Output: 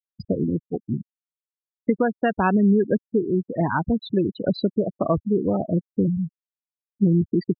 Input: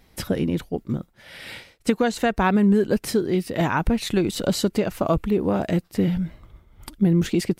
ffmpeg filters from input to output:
-af "highpass=f=73:w=0.5412,highpass=f=73:w=1.3066,afftfilt=real='re*gte(hypot(re,im),0.141)':imag='im*gte(hypot(re,im),0.141)':win_size=1024:overlap=0.75"

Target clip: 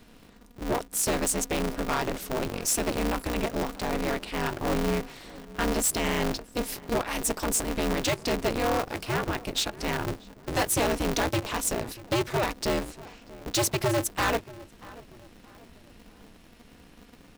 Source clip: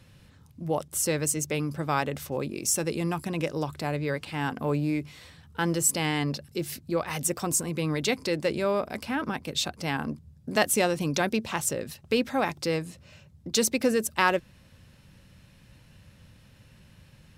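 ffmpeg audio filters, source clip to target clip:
-filter_complex "[0:a]volume=13.3,asoftclip=hard,volume=0.075,asplit=2[s0][s1];[s1]adelay=636,lowpass=f=1600:p=1,volume=0.112,asplit=2[s2][s3];[s3]adelay=636,lowpass=f=1600:p=1,volume=0.44,asplit=2[s4][s5];[s5]adelay=636,lowpass=f=1600:p=1,volume=0.44[s6];[s0][s2][s4][s6]amix=inputs=4:normalize=0,aeval=exprs='val(0)*sgn(sin(2*PI*120*n/s))':c=same,volume=1.19"

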